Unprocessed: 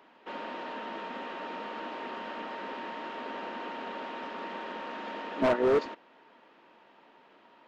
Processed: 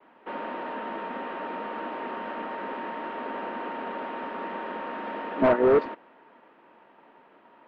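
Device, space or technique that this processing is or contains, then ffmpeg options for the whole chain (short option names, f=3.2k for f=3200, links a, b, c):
hearing-loss simulation: -af "lowpass=2.1k,agate=range=-33dB:threshold=-57dB:ratio=3:detection=peak,volume=5dB"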